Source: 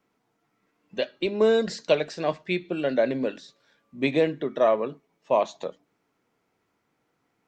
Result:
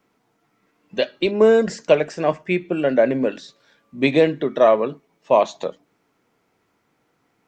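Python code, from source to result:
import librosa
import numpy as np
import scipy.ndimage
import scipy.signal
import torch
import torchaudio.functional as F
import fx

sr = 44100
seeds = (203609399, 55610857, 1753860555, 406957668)

y = fx.peak_eq(x, sr, hz=4000.0, db=-14.5, octaves=0.51, at=(1.31, 3.32))
y = y * librosa.db_to_amplitude(6.5)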